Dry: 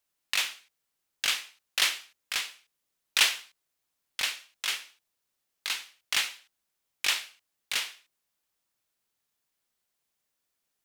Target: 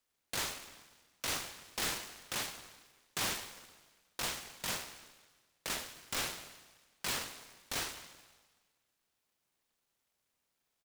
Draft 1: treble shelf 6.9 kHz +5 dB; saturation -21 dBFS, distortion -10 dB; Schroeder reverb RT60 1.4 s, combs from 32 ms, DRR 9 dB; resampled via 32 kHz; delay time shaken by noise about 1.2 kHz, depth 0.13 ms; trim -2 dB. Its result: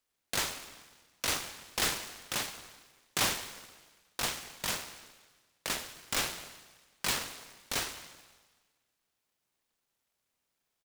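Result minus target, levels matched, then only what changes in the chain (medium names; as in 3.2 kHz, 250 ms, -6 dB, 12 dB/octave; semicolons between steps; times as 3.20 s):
saturation: distortion -5 dB
change: saturation -29.5 dBFS, distortion -4 dB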